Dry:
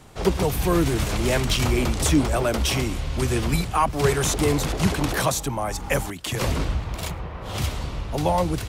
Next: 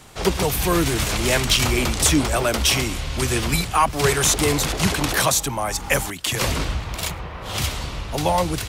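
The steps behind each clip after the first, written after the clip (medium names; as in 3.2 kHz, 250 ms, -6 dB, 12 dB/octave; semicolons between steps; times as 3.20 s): tilt shelf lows -4 dB, about 1.1 kHz; trim +3.5 dB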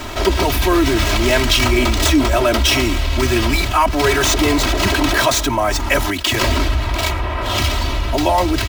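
median filter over 5 samples; comb 3.1 ms, depth 99%; level flattener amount 50%; trim -1 dB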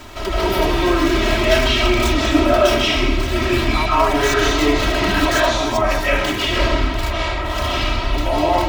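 reverberation, pre-delay 115 ms, DRR -8.5 dB; trim -9.5 dB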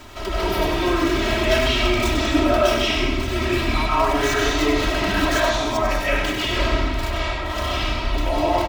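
delay 97 ms -7.5 dB; trim -4 dB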